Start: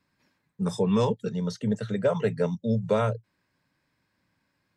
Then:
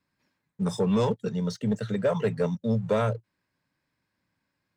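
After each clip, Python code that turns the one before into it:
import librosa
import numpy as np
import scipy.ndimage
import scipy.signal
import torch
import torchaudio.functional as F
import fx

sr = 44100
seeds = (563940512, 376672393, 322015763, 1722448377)

y = fx.leveller(x, sr, passes=1)
y = y * 10.0 ** (-3.0 / 20.0)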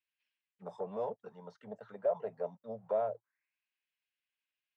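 y = fx.auto_wah(x, sr, base_hz=670.0, top_hz=2900.0, q=5.3, full_db=-23.5, direction='down')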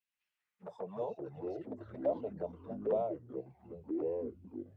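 y = fx.env_flanger(x, sr, rest_ms=9.9, full_db=-33.5)
y = fx.echo_pitch(y, sr, ms=119, semitones=-5, count=3, db_per_echo=-3.0)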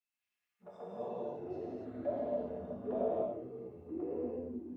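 y = fx.comb_fb(x, sr, f0_hz=240.0, decay_s=0.16, harmonics='odd', damping=0.0, mix_pct=70)
y = fx.rev_gated(y, sr, seeds[0], gate_ms=320, shape='flat', drr_db=-6.5)
y = y * 10.0 ** (1.0 / 20.0)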